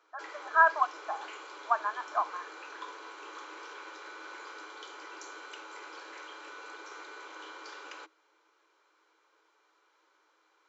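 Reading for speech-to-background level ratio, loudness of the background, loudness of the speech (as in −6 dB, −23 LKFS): 17.0 dB, −45.5 LKFS, −28.5 LKFS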